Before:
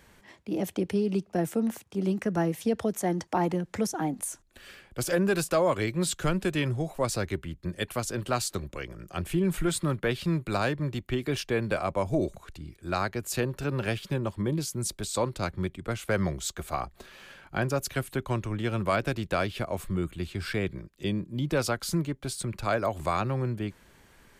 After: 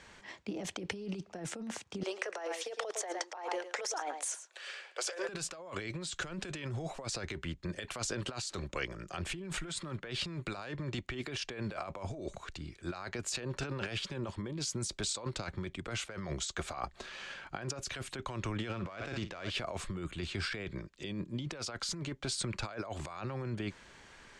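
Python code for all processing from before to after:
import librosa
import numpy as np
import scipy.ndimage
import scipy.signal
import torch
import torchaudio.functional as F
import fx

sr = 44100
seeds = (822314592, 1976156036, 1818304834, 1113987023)

y = fx.chain(x, sr, fx.steep_highpass(hz=430.0, slope=36),
    fx.echo_single(ms=108, db=-13.0), at=(2.03, 5.29))
y = fx.chain(y, sr, fx.lowpass(hz=6200.0, slope=12),
    fx.room_flutter(wall_m=9.0, rt60_s=0.2),
    fx.running_max(window=3), at=(18.71, 19.5))
y = scipy.signal.sosfilt(scipy.signal.butter(4, 7500.0, 'lowpass', fs=sr, output='sos'), y)
y = fx.low_shelf(y, sr, hz=470.0, db=-8.5)
y = fx.over_compress(y, sr, threshold_db=-39.0, ratio=-1.0)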